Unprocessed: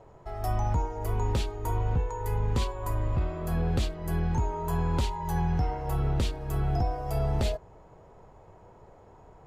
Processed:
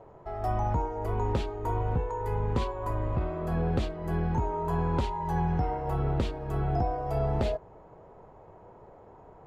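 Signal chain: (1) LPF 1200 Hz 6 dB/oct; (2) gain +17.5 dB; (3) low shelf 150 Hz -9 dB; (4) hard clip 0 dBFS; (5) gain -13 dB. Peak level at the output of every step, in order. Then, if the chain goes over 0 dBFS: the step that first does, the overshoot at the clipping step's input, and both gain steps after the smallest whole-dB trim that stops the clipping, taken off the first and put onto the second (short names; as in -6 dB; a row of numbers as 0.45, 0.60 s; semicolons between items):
-18.0, -0.5, -2.5, -2.5, -15.5 dBFS; no overload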